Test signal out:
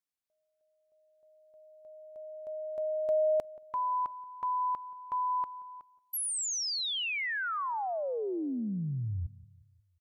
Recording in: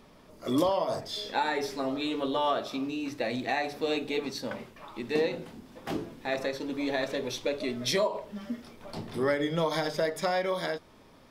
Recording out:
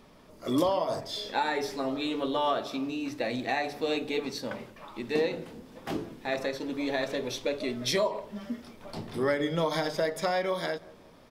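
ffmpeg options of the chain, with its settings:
-filter_complex "[0:a]asplit=2[a][b];[b]adelay=179,lowpass=f=1.1k:p=1,volume=-19.5dB,asplit=2[c][d];[d]adelay=179,lowpass=f=1.1k:p=1,volume=0.5,asplit=2[e][f];[f]adelay=179,lowpass=f=1.1k:p=1,volume=0.5,asplit=2[g][h];[h]adelay=179,lowpass=f=1.1k:p=1,volume=0.5[i];[a][c][e][g][i]amix=inputs=5:normalize=0"

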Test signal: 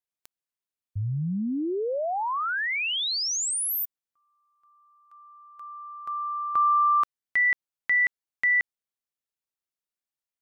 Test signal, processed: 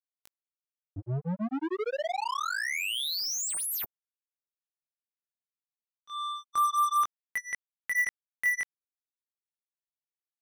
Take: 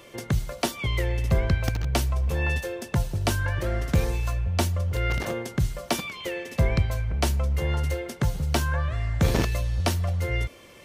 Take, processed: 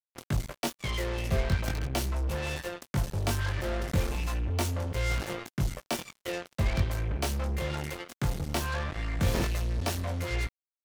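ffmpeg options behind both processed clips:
-af "flanger=delay=19:depth=3.8:speed=0.4,acrusher=bits=4:mix=0:aa=0.5,volume=-2.5dB"

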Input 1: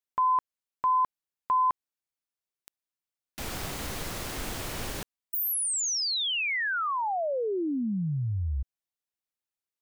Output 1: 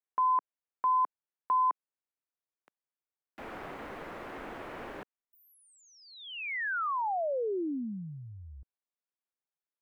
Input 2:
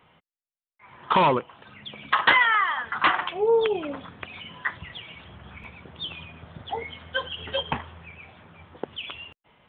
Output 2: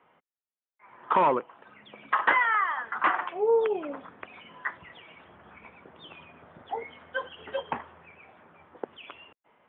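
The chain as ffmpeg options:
-filter_complex "[0:a]acrossover=split=3400[a][b];[b]acompressor=threshold=-42dB:ratio=4:attack=1:release=60[c];[a][c]amix=inputs=2:normalize=0,acrossover=split=230 2300:gain=0.158 1 0.0891[d][e][f];[d][e][f]amix=inputs=3:normalize=0,volume=-2dB"

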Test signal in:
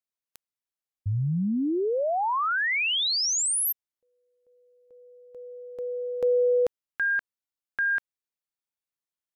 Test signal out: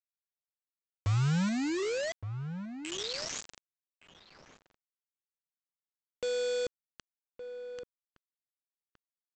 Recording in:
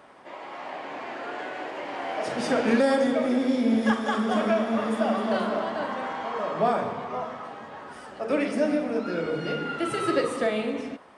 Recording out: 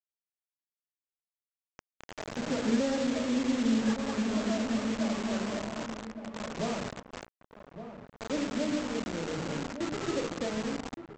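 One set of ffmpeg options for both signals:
-filter_complex "[0:a]equalizer=f=1.3k:w=0.33:g=-14.5,bandreject=f=750:w=12,bandreject=f=361.5:t=h:w=4,bandreject=f=723:t=h:w=4,bandreject=f=1.0845k:t=h:w=4,bandreject=f=1.446k:t=h:w=4,bandreject=f=1.8075k:t=h:w=4,bandreject=f=2.169k:t=h:w=4,bandreject=f=2.5305k:t=h:w=4,bandreject=f=2.892k:t=h:w=4,bandreject=f=3.2535k:t=h:w=4,bandreject=f=3.615k:t=h:w=4,bandreject=f=3.9765k:t=h:w=4,bandreject=f=4.338k:t=h:w=4,bandreject=f=4.6995k:t=h:w=4,bandreject=f=5.061k:t=h:w=4,bandreject=f=5.4225k:t=h:w=4,bandreject=f=5.784k:t=h:w=4,bandreject=f=6.1455k:t=h:w=4,bandreject=f=6.507k:t=h:w=4,bandreject=f=6.8685k:t=h:w=4,bandreject=f=7.23k:t=h:w=4,bandreject=f=7.5915k:t=h:w=4,bandreject=f=7.953k:t=h:w=4,bandreject=f=8.3145k:t=h:w=4,bandreject=f=8.676k:t=h:w=4,bandreject=f=9.0375k:t=h:w=4,bandreject=f=9.399k:t=h:w=4,bandreject=f=9.7605k:t=h:w=4,bandreject=f=10.122k:t=h:w=4,bandreject=f=10.4835k:t=h:w=4,bandreject=f=10.845k:t=h:w=4,bandreject=f=11.2065k:t=h:w=4,bandreject=f=11.568k:t=h:w=4,bandreject=f=11.9295k:t=h:w=4,bandreject=f=12.291k:t=h:w=4,bandreject=f=12.6525k:t=h:w=4,bandreject=f=13.014k:t=h:w=4,bandreject=f=13.3755k:t=h:w=4,adynamicsmooth=sensitivity=7:basefreq=920,aresample=16000,acrusher=bits=5:mix=0:aa=0.000001,aresample=44100,asplit=2[a][b];[b]adelay=1166,volume=-10dB,highshelf=f=4k:g=-26.2[c];[a][c]amix=inputs=2:normalize=0"

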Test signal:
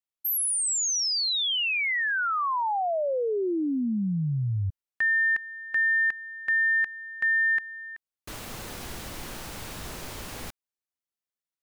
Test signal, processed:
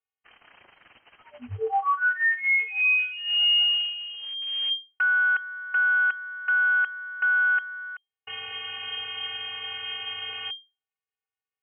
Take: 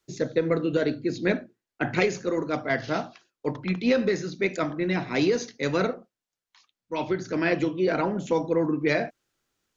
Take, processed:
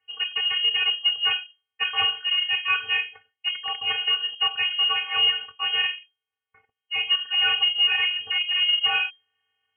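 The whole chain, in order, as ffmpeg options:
-af "aeval=exprs='0.335*(cos(1*acos(clip(val(0)/0.335,-1,1)))-cos(1*PI/2))+0.00422*(cos(3*acos(clip(val(0)/0.335,-1,1)))-cos(3*PI/2))+0.15*(cos(5*acos(clip(val(0)/0.335,-1,1)))-cos(5*PI/2))':c=same,afftfilt=real='hypot(re,im)*cos(PI*b)':imag='0':win_size=512:overlap=0.75,acrusher=bits=5:mode=log:mix=0:aa=0.000001,lowpass=f=2.7k:t=q:w=0.5098,lowpass=f=2.7k:t=q:w=0.6013,lowpass=f=2.7k:t=q:w=0.9,lowpass=f=2.7k:t=q:w=2.563,afreqshift=-3200,volume=-2.5dB"

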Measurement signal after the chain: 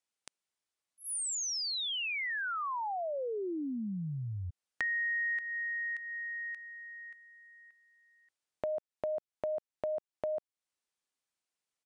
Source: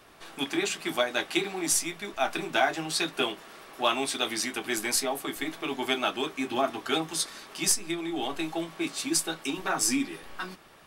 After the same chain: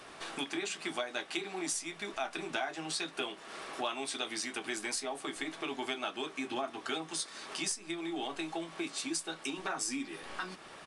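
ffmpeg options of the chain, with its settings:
-af "lowshelf=f=120:g=-10.5,acompressor=threshold=-43dB:ratio=3,aresample=22050,aresample=44100,volume=5dB"

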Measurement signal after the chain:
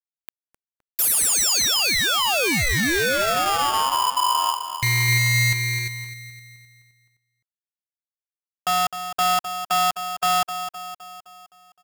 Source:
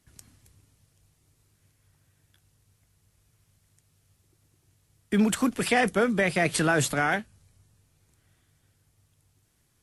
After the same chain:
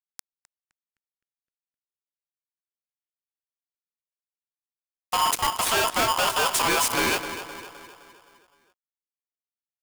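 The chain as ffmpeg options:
-filter_complex "[0:a]afreqshift=-140,bandreject=f=60:t=h:w=6,bandreject=f=120:t=h:w=6,bandreject=f=180:t=h:w=6,bandreject=f=240:t=h:w=6,bandreject=f=300:t=h:w=6,bandreject=f=360:t=h:w=6,bandreject=f=420:t=h:w=6,crystalizer=i=1:c=0,asplit=2[a][b];[b]aeval=exprs='sgn(val(0))*max(abs(val(0))-0.01,0)':c=same,volume=-4.5dB[c];[a][c]amix=inputs=2:normalize=0,acrusher=bits=3:mix=0:aa=0.5,asoftclip=type=tanh:threshold=-20.5dB,asplit=2[d][e];[e]adelay=258,lowpass=f=2k:p=1,volume=-10dB,asplit=2[f][g];[g]adelay=258,lowpass=f=2k:p=1,volume=0.54,asplit=2[h][i];[i]adelay=258,lowpass=f=2k:p=1,volume=0.54,asplit=2[j][k];[k]adelay=258,lowpass=f=2k:p=1,volume=0.54,asplit=2[l][m];[m]adelay=258,lowpass=f=2k:p=1,volume=0.54,asplit=2[n][o];[o]adelay=258,lowpass=f=2k:p=1,volume=0.54[p];[f][h][j][l][n][p]amix=inputs=6:normalize=0[q];[d][q]amix=inputs=2:normalize=0,aeval=exprs='val(0)*sgn(sin(2*PI*1000*n/s))':c=same,volume=2dB"

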